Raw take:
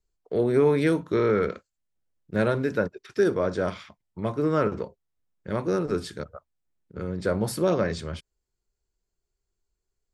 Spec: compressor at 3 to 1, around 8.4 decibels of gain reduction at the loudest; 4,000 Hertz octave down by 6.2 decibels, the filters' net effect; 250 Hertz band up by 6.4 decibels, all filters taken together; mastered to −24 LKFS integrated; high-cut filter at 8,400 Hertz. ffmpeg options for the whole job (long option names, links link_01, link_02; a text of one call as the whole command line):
ffmpeg -i in.wav -af "lowpass=8400,equalizer=frequency=250:width_type=o:gain=9,equalizer=frequency=4000:width_type=o:gain=-7.5,acompressor=threshold=-23dB:ratio=3,volume=4dB" out.wav